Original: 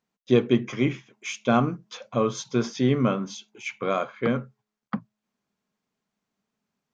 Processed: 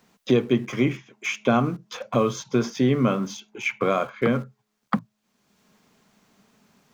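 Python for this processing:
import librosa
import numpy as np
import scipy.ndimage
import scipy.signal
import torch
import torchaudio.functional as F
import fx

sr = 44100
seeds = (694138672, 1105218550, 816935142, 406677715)

p1 = fx.dynamic_eq(x, sr, hz=3900.0, q=2.4, threshold_db=-49.0, ratio=4.0, max_db=-3)
p2 = np.where(np.abs(p1) >= 10.0 ** (-36.5 / 20.0), p1, 0.0)
p3 = p1 + (p2 * librosa.db_to_amplitude(-12.0))
y = fx.band_squash(p3, sr, depth_pct=70)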